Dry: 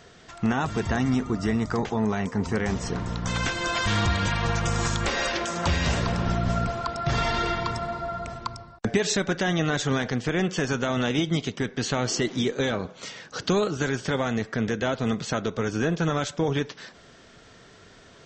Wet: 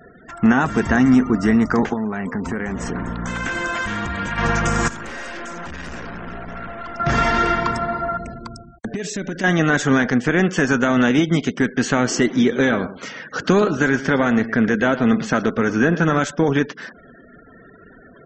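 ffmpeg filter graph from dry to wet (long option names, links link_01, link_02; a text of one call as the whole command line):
ffmpeg -i in.wav -filter_complex "[0:a]asettb=1/sr,asplit=3[link_01][link_02][link_03];[link_01]atrim=end=1.934[link_04];[link_02]atrim=start=1.93:end=4.38,asetpts=PTS-STARTPTS,afade=type=in:duration=0.004:curve=qsin,afade=type=out:start_time=2.446:duration=0.004:curve=qsin,acompressor=threshold=-27dB:ratio=10:attack=3.2:release=140:knee=1:detection=peak,acrusher=bits=6:mode=log:mix=0:aa=0.000001,equalizer=frequency=5100:width=2.3:gain=-3.5[link_05];[link_03]atrim=start=4.376[link_06];[link_04][link_05]acrossfade=duration=0.004:curve1=hsin:curve2=qsin[link_07];[link_07][link_06]acrossfade=duration=0.004:curve1=qsin:curve2=hsin,asettb=1/sr,asplit=3[link_08][link_09][link_10];[link_08]atrim=end=4.884[link_11];[link_09]atrim=start=4.88:end=7,asetpts=PTS-STARTPTS,afade=type=in:duration=0.004:curve=qsin,afade=type=out:start_time=2.116:duration=0.004:curve=qsin,bandreject=frequency=50:width_type=h:width=6,bandreject=frequency=100:width_type=h:width=6,bandreject=frequency=150:width_type=h:width=6,bandreject=frequency=200:width_type=h:width=6,aeval=exprs='(tanh(79.4*val(0)+0.7)-tanh(0.7))/79.4':channel_layout=same[link_12];[link_10]atrim=start=6.996[link_13];[link_11][link_12]acrossfade=duration=0.004:curve1=hsin:curve2=qsin[link_14];[link_14][link_13]acrossfade=duration=0.004:curve1=qsin:curve2=hsin,asettb=1/sr,asplit=3[link_15][link_16][link_17];[link_15]atrim=end=8.174[link_18];[link_16]atrim=start=8.17:end=9.44,asetpts=PTS-STARTPTS,afade=type=in:duration=0.004:curve=qsin,afade=type=out:start_time=1.266:duration=0.004:curve=qsin,equalizer=frequency=1100:width=1.1:gain=-12.5,acompressor=threshold=-28dB:ratio=16:attack=3.2:release=140:knee=1:detection=peak,volume=28dB,asoftclip=hard,volume=-28dB[link_19];[link_17]atrim=start=9.436[link_20];[link_18][link_19]acrossfade=duration=0.004:curve1=hsin:curve2=qsin[link_21];[link_21][link_20]acrossfade=duration=0.004:curve1=qsin:curve2=hsin,asettb=1/sr,asplit=3[link_22][link_23][link_24];[link_22]atrim=end=12.384[link_25];[link_23]atrim=start=12.38:end=16.2,asetpts=PTS-STARTPTS,afade=type=in:duration=0.004:curve=qsin,afade=type=out:start_time=3.816:duration=0.004:curve=qsin,lowpass=6500,aecho=1:1:114:0.211,atrim=end_sample=168462[link_26];[link_24]atrim=start=16.196[link_27];[link_25][link_26]acrossfade=duration=0.004:curve1=hsin:curve2=qsin[link_28];[link_28][link_27]acrossfade=duration=0.004:curve1=qsin:curve2=hsin,afftfilt=real='re*gte(hypot(re,im),0.00562)':imag='im*gte(hypot(re,im),0.00562)':win_size=1024:overlap=0.75,equalizer=frequency=100:width_type=o:width=0.67:gain=-7,equalizer=frequency=250:width_type=o:width=0.67:gain=6,equalizer=frequency=1600:width_type=o:width=0.67:gain=6,equalizer=frequency=4000:width_type=o:width=0.67:gain=-8,volume=6dB" out.wav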